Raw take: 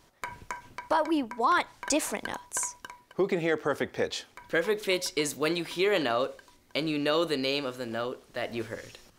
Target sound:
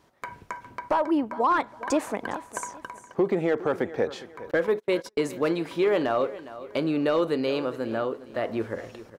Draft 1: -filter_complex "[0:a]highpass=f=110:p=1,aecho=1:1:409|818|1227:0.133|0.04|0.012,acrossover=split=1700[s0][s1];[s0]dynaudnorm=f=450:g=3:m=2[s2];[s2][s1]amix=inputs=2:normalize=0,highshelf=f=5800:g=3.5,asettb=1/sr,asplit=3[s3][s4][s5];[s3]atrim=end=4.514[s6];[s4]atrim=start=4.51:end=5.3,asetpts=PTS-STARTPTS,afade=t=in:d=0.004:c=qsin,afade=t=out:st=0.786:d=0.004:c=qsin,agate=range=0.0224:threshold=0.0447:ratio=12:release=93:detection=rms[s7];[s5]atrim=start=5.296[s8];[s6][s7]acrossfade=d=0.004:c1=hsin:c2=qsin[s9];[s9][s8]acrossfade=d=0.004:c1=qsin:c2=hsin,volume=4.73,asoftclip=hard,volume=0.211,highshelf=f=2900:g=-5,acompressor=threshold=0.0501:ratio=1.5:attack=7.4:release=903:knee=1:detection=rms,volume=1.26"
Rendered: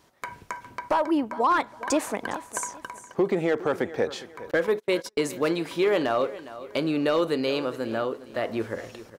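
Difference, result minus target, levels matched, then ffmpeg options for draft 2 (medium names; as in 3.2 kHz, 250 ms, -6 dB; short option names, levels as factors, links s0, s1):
8 kHz band +5.5 dB
-filter_complex "[0:a]highpass=f=110:p=1,aecho=1:1:409|818|1227:0.133|0.04|0.012,acrossover=split=1700[s0][s1];[s0]dynaudnorm=f=450:g=3:m=2[s2];[s2][s1]amix=inputs=2:normalize=0,highshelf=f=5800:g=3.5,asettb=1/sr,asplit=3[s3][s4][s5];[s3]atrim=end=4.514[s6];[s4]atrim=start=4.51:end=5.3,asetpts=PTS-STARTPTS,afade=t=in:d=0.004:c=qsin,afade=t=out:st=0.786:d=0.004:c=qsin,agate=range=0.0224:threshold=0.0447:ratio=12:release=93:detection=rms[s7];[s5]atrim=start=5.296[s8];[s6][s7]acrossfade=d=0.004:c1=hsin:c2=qsin[s9];[s9][s8]acrossfade=d=0.004:c1=qsin:c2=hsin,volume=4.73,asoftclip=hard,volume=0.211,highshelf=f=2900:g=-12,acompressor=threshold=0.0501:ratio=1.5:attack=7.4:release=903:knee=1:detection=rms,volume=1.26"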